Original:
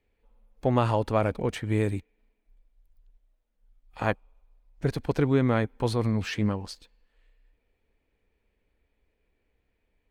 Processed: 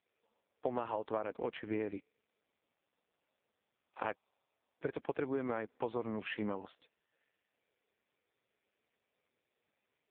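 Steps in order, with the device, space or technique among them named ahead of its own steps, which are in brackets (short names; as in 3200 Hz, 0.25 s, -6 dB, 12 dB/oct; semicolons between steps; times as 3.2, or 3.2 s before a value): voicemail (BPF 340–3300 Hz; compressor 10:1, threshold -30 dBFS, peak gain reduction 11.5 dB; gain -1 dB; AMR-NB 5.15 kbps 8000 Hz)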